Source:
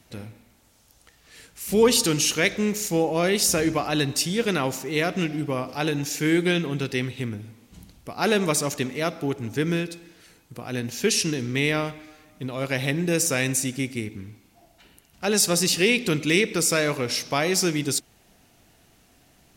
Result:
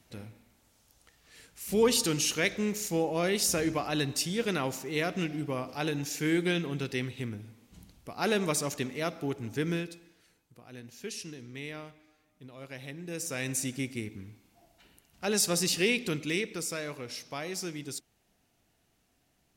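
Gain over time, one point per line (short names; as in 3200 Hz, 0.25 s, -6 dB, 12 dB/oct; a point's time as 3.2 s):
9.72 s -6.5 dB
10.6 s -17.5 dB
12.99 s -17.5 dB
13.63 s -6.5 dB
15.86 s -6.5 dB
16.79 s -14 dB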